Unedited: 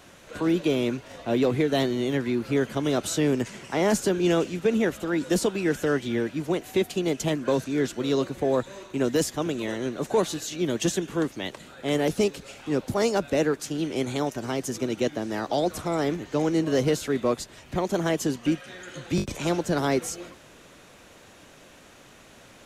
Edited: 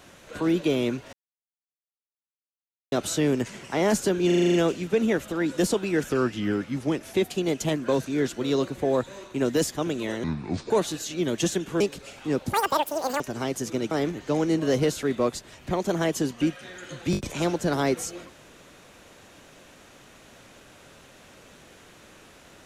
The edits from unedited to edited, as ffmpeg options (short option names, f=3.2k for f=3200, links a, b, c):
-filter_complex "[0:a]asplit=18[a][b][c][d][e][f][g][h][i][j][k][l][m][n][o][p][q][r];[a]atrim=end=1.13,asetpts=PTS-STARTPTS,afade=t=out:st=1.126:d=0.004:c=hsin[s];[b]atrim=start=1.13:end=2.92,asetpts=PTS-STARTPTS,volume=0[t];[c]atrim=start=2.92:end=4.302,asetpts=PTS-STARTPTS,afade=t=in:d=0.004:c=hsin[u];[d]atrim=start=4.258:end=4.302[v];[e]atrim=start=4.258:end=4.302[w];[f]atrim=start=4.258:end=4.302[x];[g]atrim=start=4.258:end=4.302[y];[h]atrim=start=4.258:end=4.302[z];[i]atrim=start=4.258:end=4.302[aa];[j]atrim=start=4.258:end=5.814[ab];[k]atrim=start=5.81:end=6.73,asetpts=PTS-STARTPTS,asetrate=38808,aresample=44100[ac];[l]atrim=start=6.726:end=9.834[ad];[m]atrim=start=9.83:end=10.12,asetpts=PTS-STARTPTS,asetrate=27342,aresample=44100,atrim=end_sample=20627,asetpts=PTS-STARTPTS[ae];[n]atrim=start=10.116:end=11.222[af];[o]atrim=start=12.218:end=12.954[ag];[p]atrim=start=12.95:end=14.28,asetpts=PTS-STARTPTS,asetrate=87759,aresample=44100[ah];[q]atrim=start=14.276:end=14.992[ai];[r]atrim=start=15.958[aj];[s][t][u]concat=n=3:v=0:a=1[ak];[ak][v]acrossfade=d=0.004:c1=hsin:c2=hsin[al];[al][w]acrossfade=d=0.004:c1=hsin:c2=hsin[am];[am][x]acrossfade=d=0.004:c1=hsin:c2=hsin[an];[an][y]acrossfade=d=0.004:c1=hsin:c2=hsin[ao];[ao][z]acrossfade=d=0.004:c1=hsin:c2=hsin[ap];[ap][aa]acrossfade=d=0.004:c1=hsin:c2=hsin[aq];[aq][ab]acrossfade=d=0.004:c1=hsin:c2=hsin[ar];[ar][ac]acrossfade=d=0.004:c1=hsin:c2=hsin[as];[as][ad]acrossfade=d=0.004:c1=hsin:c2=hsin[at];[at][ae]acrossfade=d=0.004:c1=hsin:c2=hsin[au];[au][af]acrossfade=d=0.004:c1=hsin:c2=hsin[av];[av][ag]acrossfade=d=0.004:c1=hsin:c2=hsin[aw];[aw][ah]acrossfade=d=0.004:c1=hsin:c2=hsin[ax];[ax][ai]acrossfade=d=0.004:c1=hsin:c2=hsin[ay];[ay][aj]acrossfade=d=0.004:c1=hsin:c2=hsin"